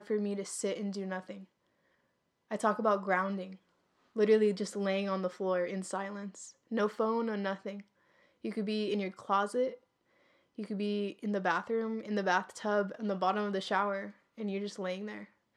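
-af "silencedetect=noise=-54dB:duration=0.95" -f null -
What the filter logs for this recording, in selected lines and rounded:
silence_start: 1.45
silence_end: 2.51 | silence_duration: 1.06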